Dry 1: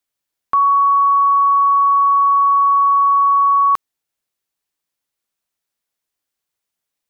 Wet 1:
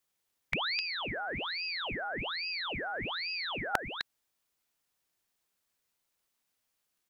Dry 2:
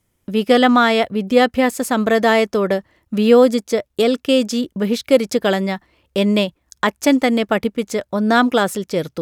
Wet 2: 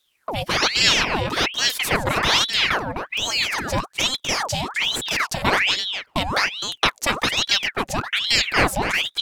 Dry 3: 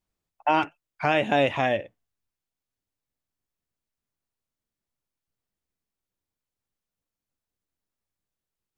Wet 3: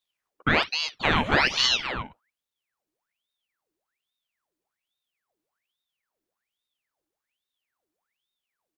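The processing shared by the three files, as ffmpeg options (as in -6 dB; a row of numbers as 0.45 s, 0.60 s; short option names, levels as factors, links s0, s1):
-filter_complex "[0:a]afftfilt=real='re*lt(hypot(re,im),1.12)':imag='im*lt(hypot(re,im),1.12)':win_size=1024:overlap=0.75,asplit=2[s0][s1];[s1]adelay=256.6,volume=0.447,highshelf=f=4000:g=-5.77[s2];[s0][s2]amix=inputs=2:normalize=0,aeval=exprs='val(0)*sin(2*PI*2000*n/s+2000*0.85/1.2*sin(2*PI*1.2*n/s))':c=same,volume=1.41"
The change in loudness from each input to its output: -21.5 LU, -3.0 LU, +2.0 LU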